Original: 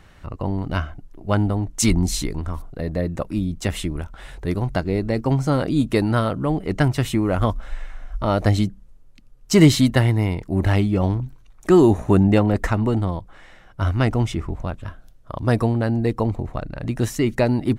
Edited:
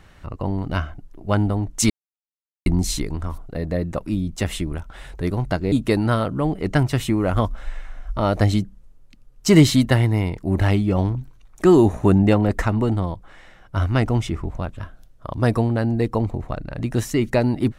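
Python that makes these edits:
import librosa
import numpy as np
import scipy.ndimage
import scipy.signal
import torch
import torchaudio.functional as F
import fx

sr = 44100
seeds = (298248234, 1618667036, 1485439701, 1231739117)

y = fx.edit(x, sr, fx.insert_silence(at_s=1.9, length_s=0.76),
    fx.cut(start_s=4.96, length_s=0.81), tone=tone)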